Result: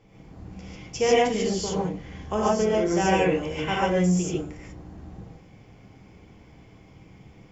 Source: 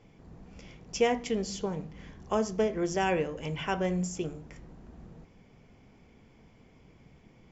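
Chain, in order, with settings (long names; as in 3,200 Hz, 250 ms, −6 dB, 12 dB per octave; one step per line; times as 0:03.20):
reverb whose tail is shaped and stops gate 170 ms rising, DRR −6 dB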